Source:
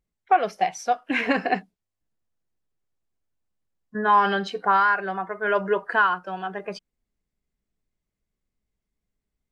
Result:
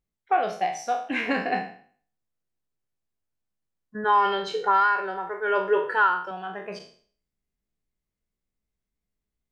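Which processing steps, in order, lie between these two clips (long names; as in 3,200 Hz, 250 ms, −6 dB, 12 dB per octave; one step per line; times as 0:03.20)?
peak hold with a decay on every bin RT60 0.49 s
0:04.04–0:06.31: comb filter 2.2 ms, depth 85%
level −5 dB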